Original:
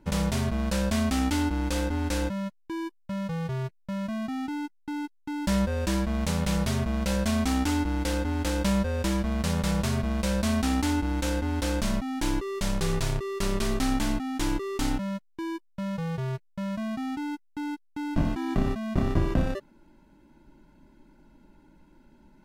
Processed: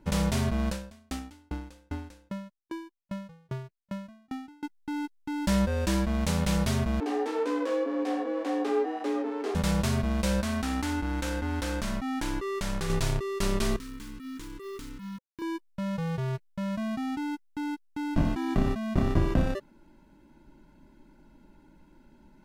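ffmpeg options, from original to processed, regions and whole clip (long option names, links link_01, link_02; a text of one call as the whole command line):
ffmpeg -i in.wav -filter_complex "[0:a]asettb=1/sr,asplit=3[link_01][link_02][link_03];[link_01]atrim=end=0.714[link_04];[link_02]atrim=start=0.71:end=4.63,asetpts=PTS-STARTPTS,afade=type=in:duration=0.004:curve=qsin,afade=type=out:start_time=3.916:duration=0.004:curve=qsin,acompressor=threshold=-27dB:ratio=5:attack=3.2:release=140:knee=1:detection=peak,aeval=exprs='val(0)*pow(10,-37*if(lt(mod(2.5*n/s,1),2*abs(2.5)/1000),1-mod(2.5*n/s,1)/(2*abs(2.5)/1000),(mod(2.5*n/s,1)-2*abs(2.5)/1000)/(1-2*abs(2.5)/1000))/20)':channel_layout=same[link_05];[link_03]atrim=start=4.626[link_06];[link_04][link_05]acrossfade=duration=0.004:curve1=hsin:curve2=qsin[link_07];[link_07][link_06]acrossfade=duration=0.004:curve1=qsin:curve2=hsin,asettb=1/sr,asplit=3[link_08][link_09][link_10];[link_08]atrim=end=7.004[link_11];[link_09]atrim=start=7:end=9.55,asetpts=PTS-STARTPTS,afade=type=in:duration=0.004:curve=qsin,afade=type=out:start_time=2.546:duration=0.004:curve=qsin,lowpass=frequency=1500:poles=1,flanger=delay=16.5:depth=4.5:speed=1.9,afreqshift=230[link_12];[link_10]atrim=start=9.546[link_13];[link_11][link_12]acrossfade=duration=0.004:curve1=hsin:curve2=qsin[link_14];[link_14][link_13]acrossfade=duration=0.004:curve1=qsin:curve2=hsin,asettb=1/sr,asplit=3[link_15][link_16][link_17];[link_15]atrim=end=10.404[link_18];[link_16]atrim=start=10.4:end=12.9,asetpts=PTS-STARTPTS,afade=type=in:duration=0.004:curve=qsin,afade=type=out:start_time=2.496:duration=0.004:curve=qsin,equalizer=frequency=1500:width=1.1:gain=4.5,acompressor=threshold=-28dB:ratio=3:attack=3.2:release=140:knee=1:detection=peak[link_19];[link_17]atrim=start=12.896[link_20];[link_18][link_19]acrossfade=duration=0.004:curve1=hsin:curve2=qsin[link_21];[link_21][link_20]acrossfade=duration=0.004:curve1=qsin:curve2=hsin,asettb=1/sr,asplit=3[link_22][link_23][link_24];[link_22]atrim=end=13.764[link_25];[link_23]atrim=start=13.76:end=15.42,asetpts=PTS-STARTPTS,afade=type=in:duration=0.004:curve=qsin,afade=type=out:start_time=1.656:duration=0.004:curve=qsin,acompressor=threshold=-39dB:ratio=6:attack=3.2:release=140:knee=1:detection=peak,acrusher=bits=7:mix=0:aa=0.5,asuperstop=centerf=690:order=12:qfactor=1.7[link_26];[link_24]atrim=start=15.416[link_27];[link_25][link_26]acrossfade=duration=0.004:curve1=hsin:curve2=qsin[link_28];[link_28][link_27]acrossfade=duration=0.004:curve1=qsin:curve2=hsin" out.wav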